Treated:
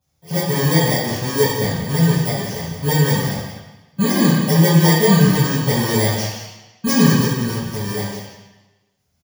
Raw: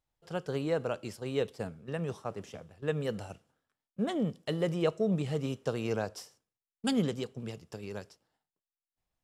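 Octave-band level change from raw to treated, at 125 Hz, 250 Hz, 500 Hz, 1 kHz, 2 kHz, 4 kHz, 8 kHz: +21.0, +17.0, +12.0, +18.5, +20.0, +20.0, +25.5 dB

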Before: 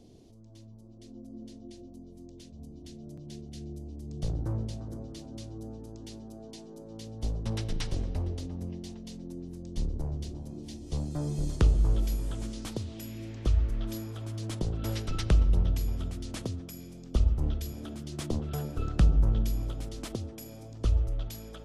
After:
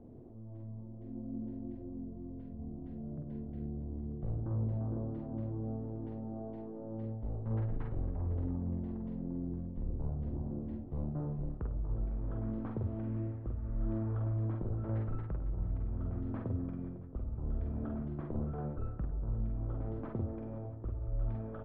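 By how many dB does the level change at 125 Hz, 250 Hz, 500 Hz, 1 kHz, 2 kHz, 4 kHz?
-4.0 dB, -1.5 dB, -3.0 dB, -4.0 dB, under -10 dB, under -30 dB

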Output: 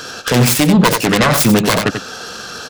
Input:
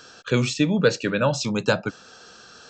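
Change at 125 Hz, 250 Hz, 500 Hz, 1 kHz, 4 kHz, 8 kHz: +10.5, +11.0, +6.0, +13.5, +12.0, +15.5 dB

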